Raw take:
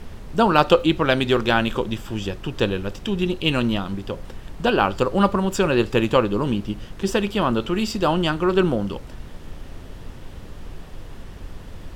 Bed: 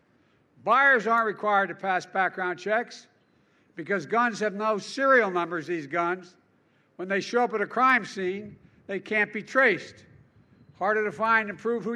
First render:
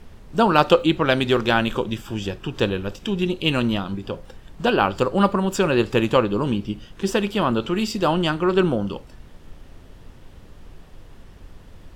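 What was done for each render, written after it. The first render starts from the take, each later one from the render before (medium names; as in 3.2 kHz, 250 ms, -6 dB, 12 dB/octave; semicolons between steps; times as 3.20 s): noise print and reduce 7 dB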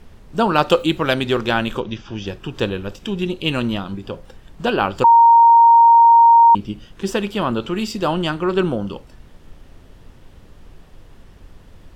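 0.70–1.14 s: treble shelf 6.5 kHz +11 dB; 1.80–2.27 s: elliptic low-pass 6.2 kHz; 5.04–6.55 s: bleep 929 Hz -6 dBFS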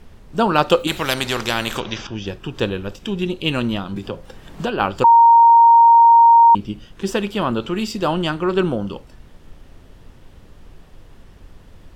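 0.87–2.07 s: spectrum-flattening compressor 2:1; 3.96–4.80 s: three bands compressed up and down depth 70%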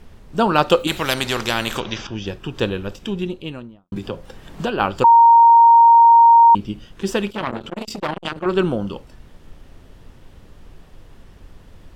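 2.93–3.92 s: studio fade out; 7.30–8.46 s: transformer saturation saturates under 1.3 kHz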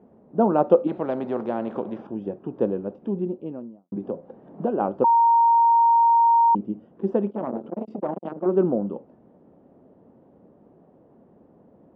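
Chebyshev band-pass 210–690 Hz, order 2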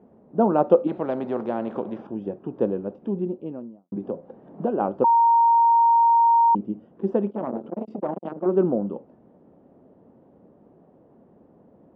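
no audible change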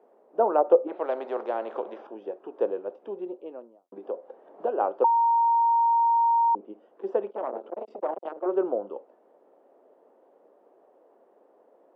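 high-pass 420 Hz 24 dB/octave; low-pass that closes with the level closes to 790 Hz, closed at -15 dBFS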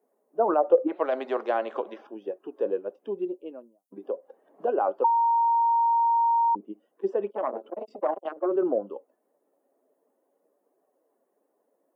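expander on every frequency bin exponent 1.5; in parallel at -0.5 dB: compressor with a negative ratio -32 dBFS, ratio -0.5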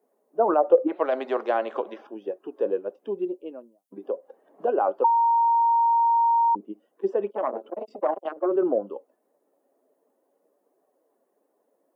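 trim +2 dB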